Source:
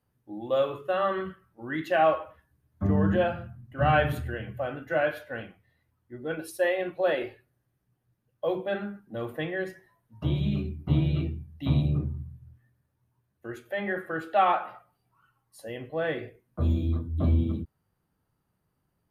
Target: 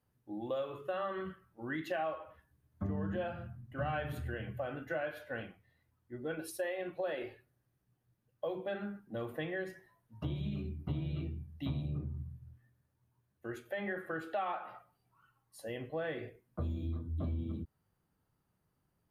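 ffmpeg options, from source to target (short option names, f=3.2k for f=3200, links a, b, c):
-af "acompressor=threshold=-32dB:ratio=4,volume=-3dB"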